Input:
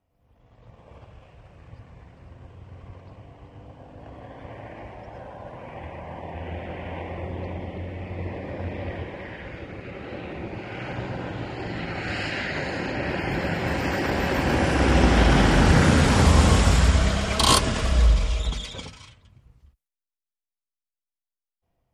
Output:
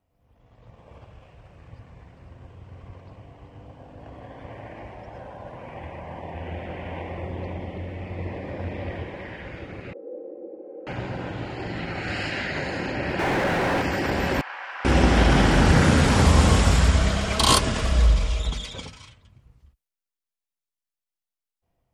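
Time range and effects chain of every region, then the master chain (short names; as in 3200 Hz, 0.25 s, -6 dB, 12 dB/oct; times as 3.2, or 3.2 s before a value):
9.93–10.87 zero-crossing step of -38 dBFS + Butterworth band-pass 430 Hz, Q 2.8 + comb 3.8 ms, depth 100%
13.19–13.82 half-wave gain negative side -3 dB + air absorption 77 m + overdrive pedal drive 39 dB, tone 1000 Hz, clips at -14 dBFS
14.41–14.85 HPF 1000 Hz 24 dB/oct + tape spacing loss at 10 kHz 38 dB
whole clip: dry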